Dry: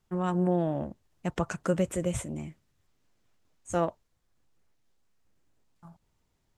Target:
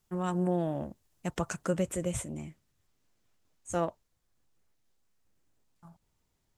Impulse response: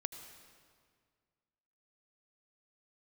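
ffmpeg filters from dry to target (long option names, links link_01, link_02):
-af "asetnsamples=nb_out_samples=441:pad=0,asendcmd='1.64 highshelf g 5.5',highshelf=frequency=5700:gain=12,volume=-3dB"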